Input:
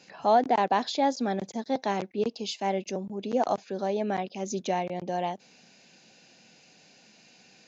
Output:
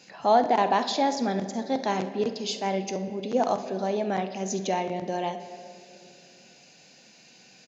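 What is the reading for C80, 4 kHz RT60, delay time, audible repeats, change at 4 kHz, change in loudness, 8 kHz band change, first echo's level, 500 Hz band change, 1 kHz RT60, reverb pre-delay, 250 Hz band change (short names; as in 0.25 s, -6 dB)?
12.0 dB, 1.5 s, 48 ms, 1, +3.0 dB, +1.5 dB, n/a, -16.0 dB, +1.5 dB, 2.1 s, 6 ms, +2.0 dB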